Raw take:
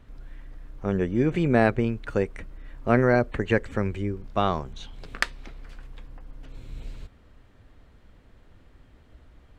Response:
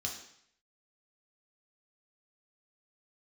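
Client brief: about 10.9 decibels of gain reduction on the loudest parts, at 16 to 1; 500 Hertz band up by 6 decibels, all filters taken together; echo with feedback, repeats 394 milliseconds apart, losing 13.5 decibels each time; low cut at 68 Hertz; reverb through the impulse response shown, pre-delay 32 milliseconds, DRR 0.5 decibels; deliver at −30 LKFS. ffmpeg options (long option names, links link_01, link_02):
-filter_complex "[0:a]highpass=68,equalizer=frequency=500:width_type=o:gain=7.5,acompressor=threshold=-21dB:ratio=16,aecho=1:1:394|788:0.211|0.0444,asplit=2[link_01][link_02];[1:a]atrim=start_sample=2205,adelay=32[link_03];[link_02][link_03]afir=irnorm=-1:irlink=0,volume=-1.5dB[link_04];[link_01][link_04]amix=inputs=2:normalize=0,volume=-4dB"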